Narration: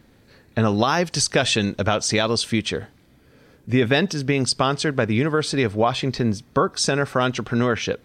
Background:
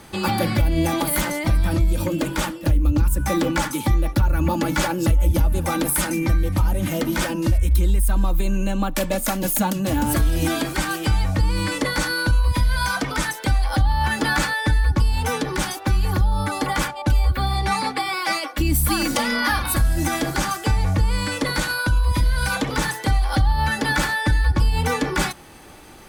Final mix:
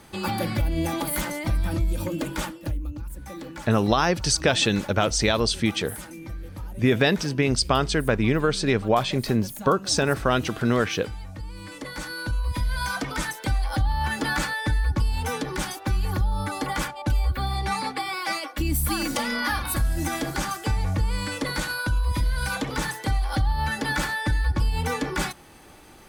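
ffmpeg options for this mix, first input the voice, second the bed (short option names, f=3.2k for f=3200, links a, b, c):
-filter_complex "[0:a]adelay=3100,volume=-1.5dB[a];[1:a]volume=6.5dB,afade=t=out:st=2.38:d=0.58:silence=0.266073,afade=t=in:st=11.61:d=1.37:silence=0.251189[b];[a][b]amix=inputs=2:normalize=0"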